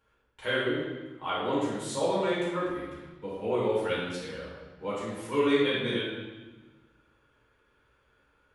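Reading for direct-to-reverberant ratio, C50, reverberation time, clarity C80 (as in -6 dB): -8.5 dB, -1.0 dB, 1.2 s, 2.0 dB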